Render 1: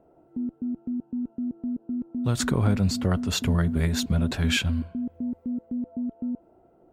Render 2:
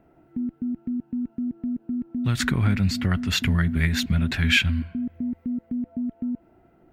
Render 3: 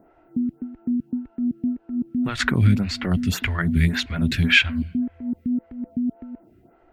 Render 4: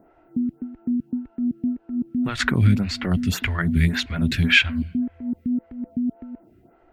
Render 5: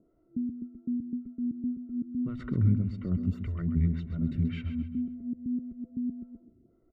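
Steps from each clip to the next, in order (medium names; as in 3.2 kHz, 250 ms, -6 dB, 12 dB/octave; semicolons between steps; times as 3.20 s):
in parallel at +0.5 dB: compression, threshold -32 dBFS, peak gain reduction 14.5 dB; on the sum: ten-band graphic EQ 500 Hz -11 dB, 1 kHz -5 dB, 2 kHz +10 dB, 8 kHz -6 dB
lamp-driven phase shifter 1.8 Hz; trim +5.5 dB
no audible change
boxcar filter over 53 samples; on a send: feedback delay 133 ms, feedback 35%, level -10 dB; on the sum: trim -7 dB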